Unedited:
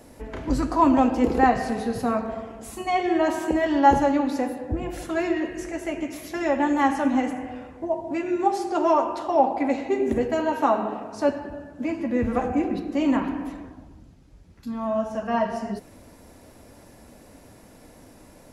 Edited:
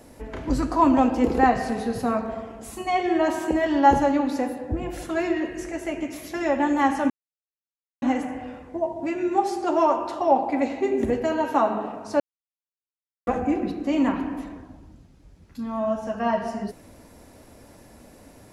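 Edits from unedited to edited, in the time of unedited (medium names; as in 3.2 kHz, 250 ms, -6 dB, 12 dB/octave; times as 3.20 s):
7.10 s: insert silence 0.92 s
11.28–12.35 s: mute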